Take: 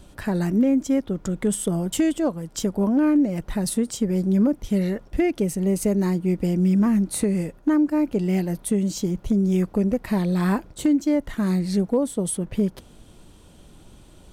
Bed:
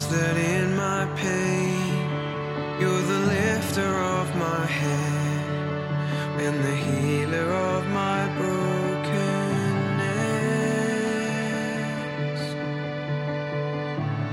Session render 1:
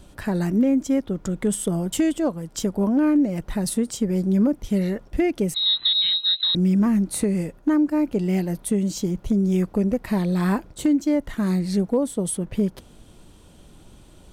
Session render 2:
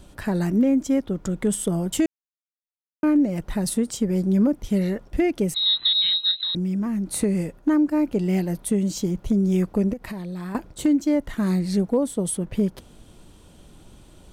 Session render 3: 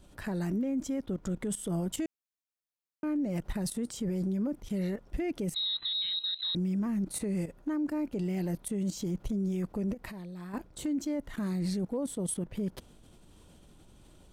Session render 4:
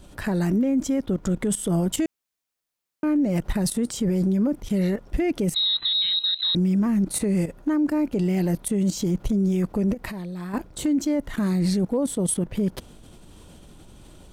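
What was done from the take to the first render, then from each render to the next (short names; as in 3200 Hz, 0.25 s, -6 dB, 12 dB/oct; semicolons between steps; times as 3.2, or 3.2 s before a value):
5.54–6.55 inverted band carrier 4000 Hz
2.06–3.03 mute; 6.31–7.1 compressor 4:1, threshold -23 dBFS; 9.93–10.55 compressor 5:1, threshold -30 dBFS
level quantiser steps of 14 dB; limiter -25.5 dBFS, peak gain reduction 10 dB
gain +9.5 dB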